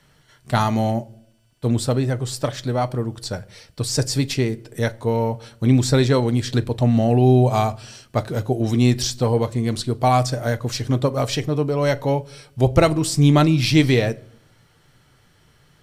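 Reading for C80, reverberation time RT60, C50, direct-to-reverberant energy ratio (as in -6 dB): 26.5 dB, no single decay rate, 24.0 dB, 11.5 dB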